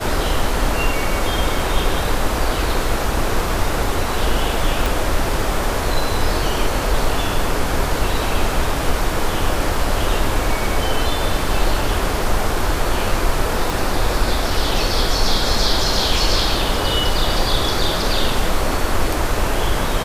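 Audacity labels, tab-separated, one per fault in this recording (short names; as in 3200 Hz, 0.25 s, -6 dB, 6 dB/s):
4.860000	4.860000	pop
13.700000	13.700000	pop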